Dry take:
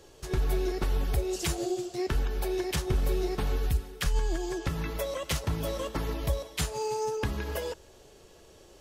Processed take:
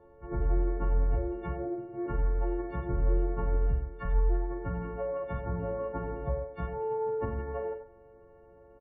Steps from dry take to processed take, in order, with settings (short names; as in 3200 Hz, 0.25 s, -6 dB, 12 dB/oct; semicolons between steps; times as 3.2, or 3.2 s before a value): frequency quantiser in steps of 4 st; LPF 1200 Hz 24 dB/oct; doubler 45 ms -8 dB; outdoor echo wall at 16 m, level -9 dB; gain -2 dB; MP3 16 kbps 24000 Hz